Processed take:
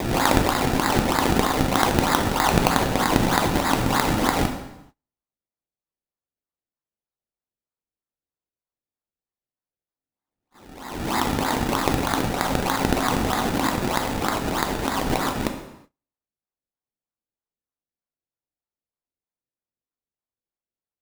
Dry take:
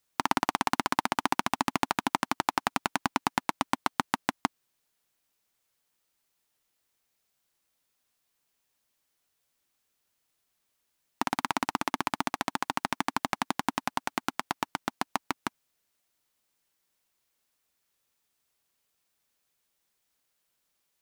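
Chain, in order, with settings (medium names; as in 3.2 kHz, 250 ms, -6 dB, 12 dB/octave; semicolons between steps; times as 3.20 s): reverse spectral sustain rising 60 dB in 1.33 s; decimation with a swept rate 29×, swing 100% 3.2 Hz; plate-style reverb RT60 0.91 s, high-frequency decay 0.9×, DRR 4 dB; gate -51 dBFS, range -29 dB; trim +1.5 dB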